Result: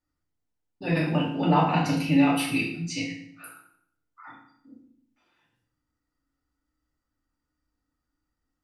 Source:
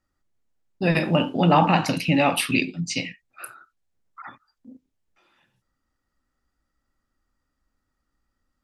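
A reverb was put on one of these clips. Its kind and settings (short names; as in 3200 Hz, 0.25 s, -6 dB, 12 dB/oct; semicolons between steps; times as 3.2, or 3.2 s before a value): FDN reverb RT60 0.67 s, low-frequency decay 1.4×, high-frequency decay 0.85×, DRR -4.5 dB; gain -11 dB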